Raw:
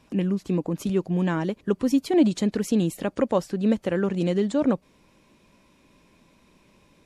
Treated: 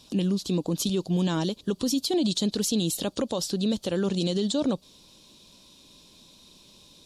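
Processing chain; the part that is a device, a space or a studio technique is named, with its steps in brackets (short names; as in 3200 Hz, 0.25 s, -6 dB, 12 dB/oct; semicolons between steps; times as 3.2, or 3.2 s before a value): over-bright horn tweeter (resonant high shelf 2800 Hz +10.5 dB, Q 3; limiter -17.5 dBFS, peak gain reduction 10.5 dB)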